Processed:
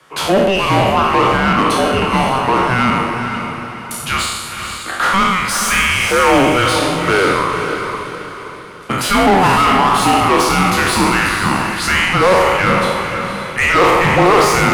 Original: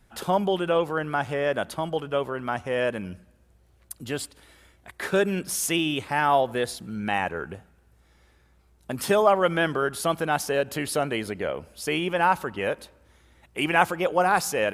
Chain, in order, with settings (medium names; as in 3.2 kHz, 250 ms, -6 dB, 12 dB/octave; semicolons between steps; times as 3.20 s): spectral sustain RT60 0.95 s; steep high-pass 210 Hz 72 dB/octave; frequency shift -380 Hz; overdrive pedal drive 27 dB, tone 2.6 kHz, clips at -3 dBFS; echo that smears into a reverb 493 ms, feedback 43%, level -6.5 dB